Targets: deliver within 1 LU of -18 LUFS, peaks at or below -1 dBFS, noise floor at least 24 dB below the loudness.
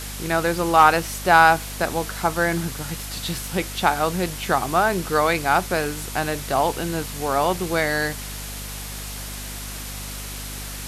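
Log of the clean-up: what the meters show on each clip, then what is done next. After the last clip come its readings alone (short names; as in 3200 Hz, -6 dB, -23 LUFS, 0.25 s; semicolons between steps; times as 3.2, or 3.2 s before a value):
hum 50 Hz; harmonics up to 250 Hz; hum level -33 dBFS; noise floor -33 dBFS; noise floor target -46 dBFS; loudness -22.0 LUFS; peak -3.0 dBFS; loudness target -18.0 LUFS
-> de-hum 50 Hz, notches 5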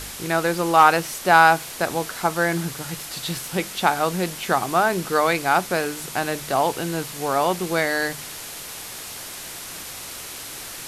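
hum none; noise floor -36 dBFS; noise floor target -46 dBFS
-> denoiser 10 dB, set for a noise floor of -36 dBFS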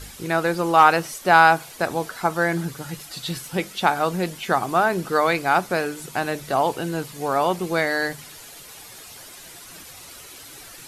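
noise floor -43 dBFS; noise floor target -46 dBFS
-> denoiser 6 dB, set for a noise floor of -43 dBFS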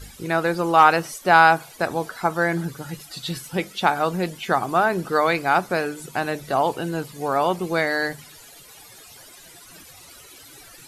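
noise floor -46 dBFS; loudness -21.5 LUFS; peak -3.0 dBFS; loudness target -18.0 LUFS
-> gain +3.5 dB; limiter -1 dBFS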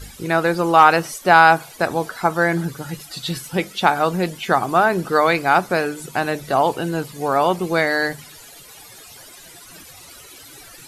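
loudness -18.5 LUFS; peak -1.0 dBFS; noise floor -43 dBFS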